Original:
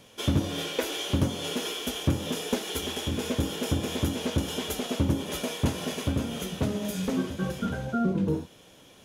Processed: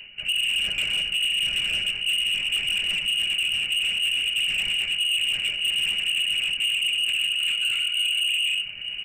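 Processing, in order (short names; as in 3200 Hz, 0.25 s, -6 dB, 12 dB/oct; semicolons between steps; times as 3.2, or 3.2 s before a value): in parallel at -2 dB: vocal rider; on the sum: non-linear reverb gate 0.21 s rising, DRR 5 dB; LPC vocoder at 8 kHz whisper; bell 68 Hz +11 dB 2 oct; comb 4.8 ms, depth 36%; reverse; compressor 4:1, threshold -29 dBFS, peak gain reduction 17.5 dB; reverse; outdoor echo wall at 150 m, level -16 dB; inverted band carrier 2900 Hz; EQ curve 110 Hz 0 dB, 410 Hz -8 dB, 690 Hz -9 dB, 1100 Hz -12 dB, 2100 Hz 0 dB; soft clip -28 dBFS, distortion -10 dB; gain +8 dB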